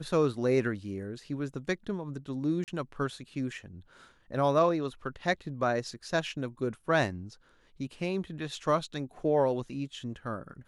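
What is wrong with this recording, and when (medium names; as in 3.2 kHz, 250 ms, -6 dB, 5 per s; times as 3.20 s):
2.64–2.68 s: dropout 38 ms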